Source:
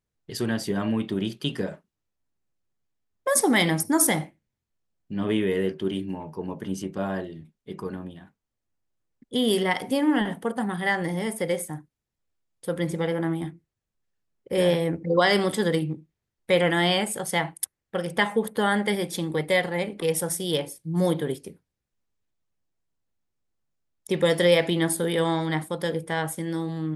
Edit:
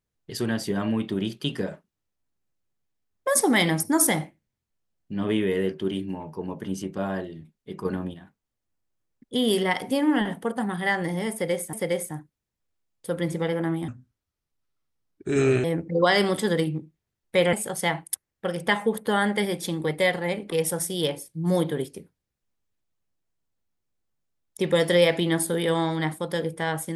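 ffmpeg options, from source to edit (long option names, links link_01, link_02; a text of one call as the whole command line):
ffmpeg -i in.wav -filter_complex "[0:a]asplit=7[link_01][link_02][link_03][link_04][link_05][link_06][link_07];[link_01]atrim=end=7.852[link_08];[link_02]atrim=start=7.848:end=8.142,asetpts=PTS-STARTPTS,volume=5.5dB[link_09];[link_03]atrim=start=8.138:end=11.732[link_10];[link_04]atrim=start=11.318:end=13.474[link_11];[link_05]atrim=start=13.47:end=14.79,asetpts=PTS-STARTPTS,asetrate=33075,aresample=44100[link_12];[link_06]atrim=start=14.786:end=16.682[link_13];[link_07]atrim=start=17.028[link_14];[link_08][link_09]acrossfade=duration=0.004:curve1=hsin:curve2=hsin[link_15];[link_15][link_10]acrossfade=duration=0.004:curve1=hsin:curve2=hsin[link_16];[link_16][link_11]acrossfade=duration=0.004:curve1=hsin:curve2=hsin[link_17];[link_17][link_12]acrossfade=duration=0.004:curve1=hsin:curve2=hsin[link_18];[link_18][link_13]acrossfade=duration=0.004:curve1=hsin:curve2=hsin[link_19];[link_19][link_14]acrossfade=duration=0.004:curve1=hsin:curve2=hsin" out.wav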